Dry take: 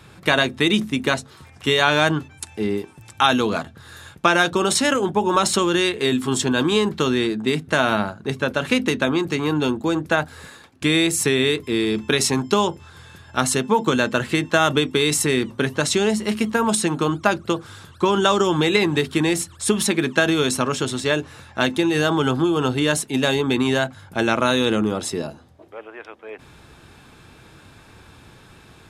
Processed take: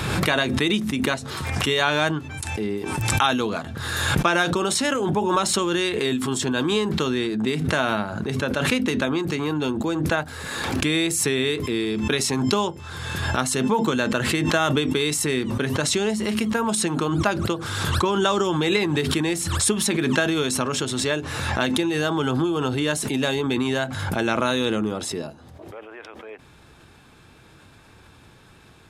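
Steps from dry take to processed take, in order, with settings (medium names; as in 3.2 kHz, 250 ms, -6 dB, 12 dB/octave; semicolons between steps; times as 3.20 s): swell ahead of each attack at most 30 dB/s; trim -4 dB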